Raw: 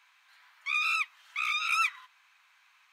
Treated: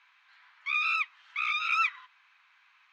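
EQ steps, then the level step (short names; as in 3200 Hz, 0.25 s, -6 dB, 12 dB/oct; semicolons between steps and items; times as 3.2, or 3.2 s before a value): HPF 860 Hz 12 dB/oct; air absorption 180 m; +3.0 dB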